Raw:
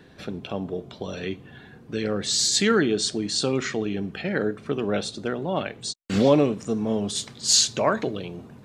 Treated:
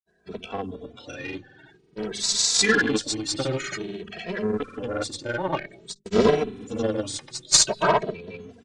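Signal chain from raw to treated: coarse spectral quantiser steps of 30 dB; expander -43 dBFS; bass shelf 180 Hz -7 dB; hum notches 50/100/150/200/250/300/350/400 Hz; granulator, pitch spread up and down by 0 st; Chebyshev shaper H 2 -11 dB, 7 -24 dB, 8 -25 dB, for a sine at -9 dBFS; resampled via 22.05 kHz; endless flanger 2.7 ms +0.51 Hz; trim +8 dB

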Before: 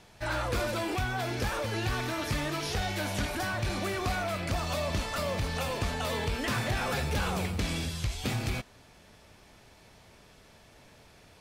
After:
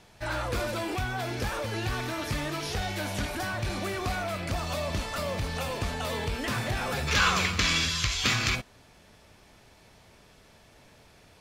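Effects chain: time-frequency box 7.08–8.55 s, 980–7600 Hz +12 dB

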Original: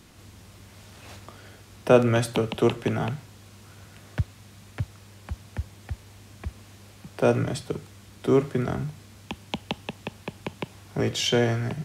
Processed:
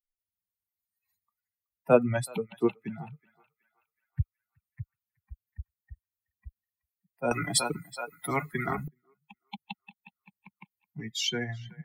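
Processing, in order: expander on every frequency bin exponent 3; on a send: band-passed feedback delay 374 ms, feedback 49%, band-pass 1.7 kHz, level -20.5 dB; 7.31–8.88 s: on the sum: spectrum-flattening compressor 10:1

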